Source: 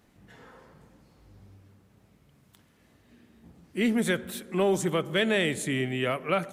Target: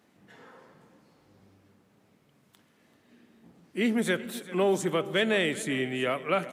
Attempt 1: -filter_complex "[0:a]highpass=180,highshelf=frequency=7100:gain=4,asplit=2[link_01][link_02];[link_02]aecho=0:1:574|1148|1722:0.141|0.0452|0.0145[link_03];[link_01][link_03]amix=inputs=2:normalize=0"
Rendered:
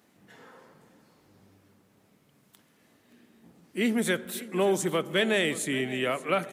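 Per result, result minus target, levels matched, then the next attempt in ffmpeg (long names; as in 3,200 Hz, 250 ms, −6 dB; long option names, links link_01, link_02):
echo 187 ms late; 8,000 Hz band +4.0 dB
-filter_complex "[0:a]highpass=180,highshelf=frequency=7100:gain=4,asplit=2[link_01][link_02];[link_02]aecho=0:1:387|774|1161:0.141|0.0452|0.0145[link_03];[link_01][link_03]amix=inputs=2:normalize=0"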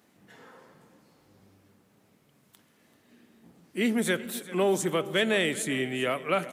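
8,000 Hz band +4.0 dB
-filter_complex "[0:a]highpass=180,highshelf=frequency=7100:gain=-4,asplit=2[link_01][link_02];[link_02]aecho=0:1:387|774|1161:0.141|0.0452|0.0145[link_03];[link_01][link_03]amix=inputs=2:normalize=0"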